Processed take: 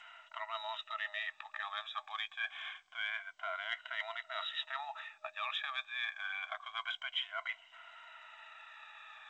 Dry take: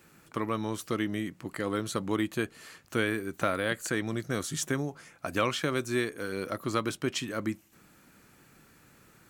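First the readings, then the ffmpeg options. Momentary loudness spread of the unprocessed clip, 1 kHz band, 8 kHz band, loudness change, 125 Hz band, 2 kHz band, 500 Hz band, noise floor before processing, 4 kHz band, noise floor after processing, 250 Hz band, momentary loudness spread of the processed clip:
7 LU, -5.5 dB, under -30 dB, -8.0 dB, under -40 dB, -3.0 dB, -19.0 dB, -60 dBFS, -0.5 dB, -64 dBFS, under -40 dB, 15 LU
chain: -af "afftfilt=real='re*pow(10,15/40*sin(2*PI*(1.9*log(max(b,1)*sr/1024/100)/log(2)-(-0.26)*(pts-256)/sr)))':imag='im*pow(10,15/40*sin(2*PI*(1.9*log(max(b,1)*sr/1024/100)/log(2)-(-0.26)*(pts-256)/sr)))':win_size=1024:overlap=0.75,afftfilt=real='re*between(b*sr/4096,620,3900)':imag='im*between(b*sr/4096,620,3900)':win_size=4096:overlap=0.75,areverse,acompressor=threshold=-44dB:ratio=8,areverse,crystalizer=i=3:c=0,volume=4.5dB" -ar 16000 -c:a g722

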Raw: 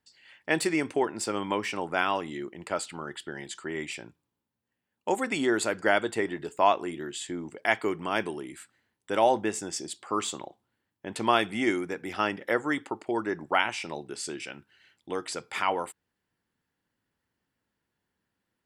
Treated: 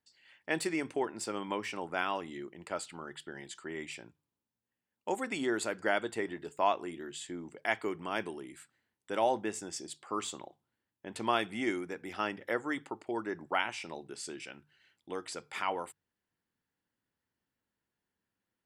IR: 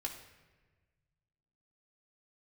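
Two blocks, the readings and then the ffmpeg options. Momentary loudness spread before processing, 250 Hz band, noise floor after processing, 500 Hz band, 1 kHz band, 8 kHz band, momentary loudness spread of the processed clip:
14 LU, -6.5 dB, under -85 dBFS, -6.5 dB, -6.5 dB, -6.5 dB, 14 LU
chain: -af "bandreject=f=50:t=h:w=6,bandreject=f=100:t=h:w=6,bandreject=f=150:t=h:w=6,volume=-6.5dB"

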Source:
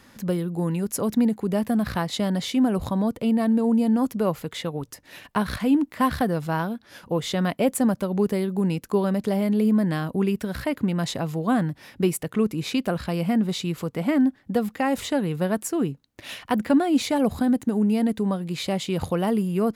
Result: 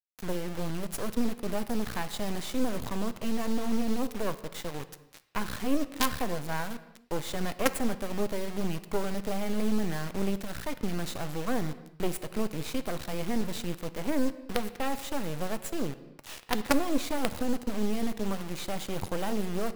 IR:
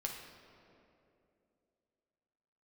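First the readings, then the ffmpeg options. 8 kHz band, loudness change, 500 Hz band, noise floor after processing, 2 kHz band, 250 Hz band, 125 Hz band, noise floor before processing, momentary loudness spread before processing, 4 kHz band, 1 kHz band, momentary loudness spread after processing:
-3.5 dB, -9.0 dB, -7.5 dB, -52 dBFS, -4.0 dB, -10.5 dB, -10.0 dB, -57 dBFS, 7 LU, -5.0 dB, -6.5 dB, 7 LU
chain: -filter_complex "[0:a]acrusher=bits=3:dc=4:mix=0:aa=0.000001,asplit=2[a][b];[1:a]atrim=start_sample=2205,afade=t=out:st=0.37:d=0.01,atrim=end_sample=16758[c];[b][c]afir=irnorm=-1:irlink=0,volume=-5.5dB[d];[a][d]amix=inputs=2:normalize=0,volume=-7dB"

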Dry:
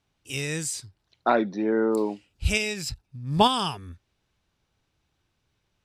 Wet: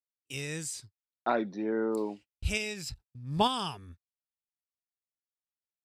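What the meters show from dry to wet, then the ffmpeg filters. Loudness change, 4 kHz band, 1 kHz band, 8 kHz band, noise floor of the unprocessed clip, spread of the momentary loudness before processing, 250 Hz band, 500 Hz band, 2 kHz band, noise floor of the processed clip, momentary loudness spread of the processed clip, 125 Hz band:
-7.0 dB, -7.0 dB, -7.0 dB, -7.0 dB, -76 dBFS, 13 LU, -7.0 dB, -7.0 dB, -7.0 dB, under -85 dBFS, 13 LU, -7.0 dB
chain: -af "agate=range=-36dB:threshold=-41dB:ratio=16:detection=peak,volume=-7dB"

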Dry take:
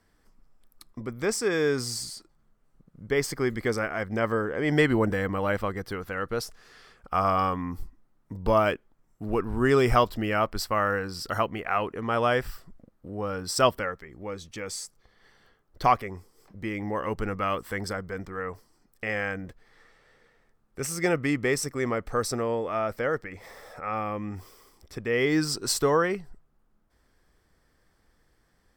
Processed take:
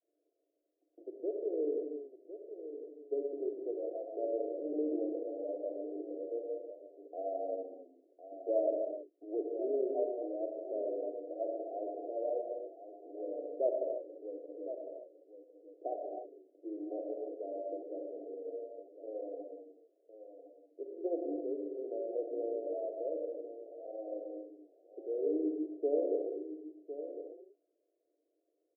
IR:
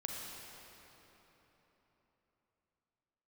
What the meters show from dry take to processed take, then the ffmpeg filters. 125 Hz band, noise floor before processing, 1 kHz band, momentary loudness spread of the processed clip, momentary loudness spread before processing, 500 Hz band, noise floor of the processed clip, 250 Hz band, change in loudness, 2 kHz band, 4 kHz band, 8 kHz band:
under -40 dB, -68 dBFS, -20.0 dB, 16 LU, 15 LU, -7.0 dB, -81 dBFS, -10.5 dB, -11.0 dB, under -40 dB, under -40 dB, under -40 dB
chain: -filter_complex "[0:a]adynamicequalizer=threshold=0.0126:dfrequency=380:dqfactor=1.3:tfrequency=380:tqfactor=1.3:attack=5:release=100:ratio=0.375:range=3.5:mode=cutabove:tftype=bell,acrusher=bits=3:mode=log:mix=0:aa=0.000001,asuperpass=centerf=450:order=20:qfactor=1.1,aecho=1:1:1056:0.282[a];[1:a]atrim=start_sample=2205,afade=t=out:st=0.37:d=0.01,atrim=end_sample=16758[b];[a][b]afir=irnorm=-1:irlink=0,volume=-5dB"

